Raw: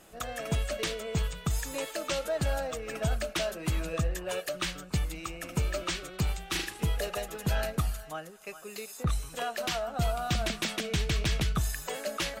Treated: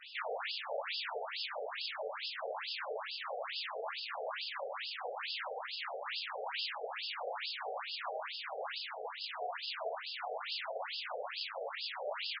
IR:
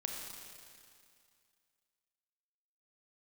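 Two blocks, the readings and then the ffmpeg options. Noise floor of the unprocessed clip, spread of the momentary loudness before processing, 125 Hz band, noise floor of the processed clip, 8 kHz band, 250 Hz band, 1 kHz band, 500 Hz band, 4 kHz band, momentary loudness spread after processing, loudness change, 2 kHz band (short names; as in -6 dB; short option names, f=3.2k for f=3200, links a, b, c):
-47 dBFS, 6 LU, under -40 dB, -45 dBFS, under -40 dB, under -35 dB, -2.5 dB, -7.0 dB, -2.5 dB, 2 LU, -7.0 dB, -4.0 dB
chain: -filter_complex "[0:a]aeval=exprs='(tanh(141*val(0)+0.35)-tanh(0.35))/141':c=same,agate=range=-33dB:threshold=-45dB:ratio=3:detection=peak,lowshelf=f=160:g=7,bandreject=f=178.6:t=h:w=4,bandreject=f=357.2:t=h:w=4,bandreject=f=535.8:t=h:w=4,aeval=exprs='0.0141*sin(PI/2*5.62*val(0)/0.0141)':c=same,aecho=1:1:821:0.562,alimiter=level_in=17.5dB:limit=-24dB:level=0:latency=1,volume=-17.5dB[a];[1:a]atrim=start_sample=2205,asetrate=38367,aresample=44100[b];[a][b]afir=irnorm=-1:irlink=0,areverse,acompressor=mode=upward:threshold=-37dB:ratio=2.5,areverse,equalizer=f=4.7k:t=o:w=0.21:g=6.5,afftfilt=real='re*between(b*sr/1024,550*pow(3800/550,0.5+0.5*sin(2*PI*2.3*pts/sr))/1.41,550*pow(3800/550,0.5+0.5*sin(2*PI*2.3*pts/sr))*1.41)':imag='im*between(b*sr/1024,550*pow(3800/550,0.5+0.5*sin(2*PI*2.3*pts/sr))/1.41,550*pow(3800/550,0.5+0.5*sin(2*PI*2.3*pts/sr))*1.41)':win_size=1024:overlap=0.75,volume=11dB"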